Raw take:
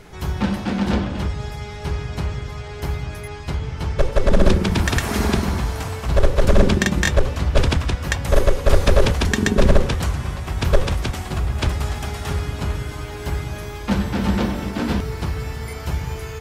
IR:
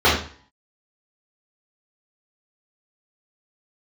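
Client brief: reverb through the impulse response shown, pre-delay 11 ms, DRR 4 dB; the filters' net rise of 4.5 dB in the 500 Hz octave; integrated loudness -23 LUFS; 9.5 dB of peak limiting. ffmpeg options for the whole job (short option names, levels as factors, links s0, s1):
-filter_complex "[0:a]equalizer=f=500:t=o:g=5.5,alimiter=limit=0.335:level=0:latency=1,asplit=2[s0][s1];[1:a]atrim=start_sample=2205,adelay=11[s2];[s1][s2]afir=irnorm=-1:irlink=0,volume=0.0398[s3];[s0][s3]amix=inputs=2:normalize=0,volume=0.75"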